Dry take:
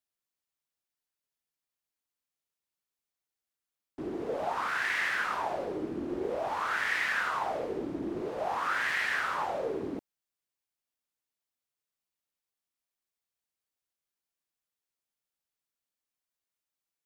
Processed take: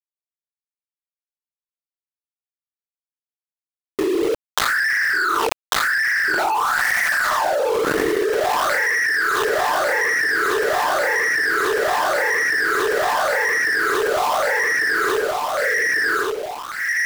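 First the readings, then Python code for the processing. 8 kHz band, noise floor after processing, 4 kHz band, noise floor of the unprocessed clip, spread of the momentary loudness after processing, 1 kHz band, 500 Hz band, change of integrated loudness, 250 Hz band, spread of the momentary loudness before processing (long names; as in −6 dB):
+23.0 dB, below −85 dBFS, +16.5 dB, below −85 dBFS, 4 LU, +14.5 dB, +16.5 dB, +13.0 dB, +10.5 dB, 7 LU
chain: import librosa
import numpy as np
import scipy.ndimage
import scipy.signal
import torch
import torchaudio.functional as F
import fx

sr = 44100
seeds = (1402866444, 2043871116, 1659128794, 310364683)

p1 = fx.envelope_sharpen(x, sr, power=2.0)
p2 = scipy.signal.sosfilt(scipy.signal.butter(4, 57.0, 'highpass', fs=sr, output='sos'), p1)
p3 = fx.hum_notches(p2, sr, base_hz=60, count=7)
p4 = p3 + 0.37 * np.pad(p3, (int(6.8 * sr / 1000.0), 0))[:len(p3)]
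p5 = 10.0 ** (-31.5 / 20.0) * np.tanh(p4 / 10.0 ** (-31.5 / 20.0))
p6 = p4 + (p5 * librosa.db_to_amplitude(-6.5))
p7 = fx.filter_lfo_highpass(p6, sr, shape='saw_down', hz=0.23, low_hz=340.0, high_hz=2100.0, q=7.6)
p8 = np.where(np.abs(p7) >= 10.0 ** (-28.5 / 20.0), p7, 0.0)
p9 = fx.leveller(p8, sr, passes=3)
p10 = fx.echo_feedback(p9, sr, ms=1146, feedback_pct=58, wet_db=-11.5)
p11 = fx.env_flatten(p10, sr, amount_pct=100)
y = p11 * librosa.db_to_amplitude(-13.5)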